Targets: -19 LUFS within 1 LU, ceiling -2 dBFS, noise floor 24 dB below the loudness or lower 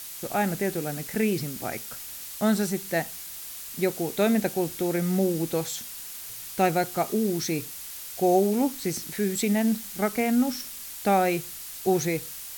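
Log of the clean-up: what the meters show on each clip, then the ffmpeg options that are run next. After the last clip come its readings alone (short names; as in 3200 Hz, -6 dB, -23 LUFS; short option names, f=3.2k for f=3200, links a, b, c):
noise floor -39 dBFS; noise floor target -51 dBFS; loudness -27.0 LUFS; peak -10.0 dBFS; loudness target -19.0 LUFS
-> -af "afftdn=nr=12:nf=-39"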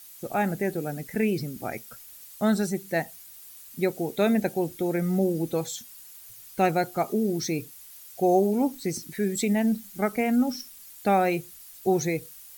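noise floor -47 dBFS; noise floor target -51 dBFS
-> -af "afftdn=nr=6:nf=-47"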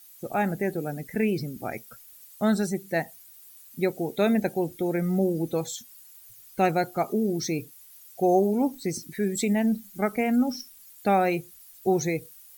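noise floor -51 dBFS; loudness -27.0 LUFS; peak -10.5 dBFS; loudness target -19.0 LUFS
-> -af "volume=8dB"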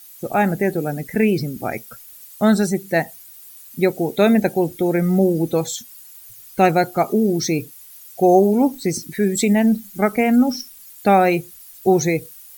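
loudness -19.0 LUFS; peak -2.5 dBFS; noise floor -43 dBFS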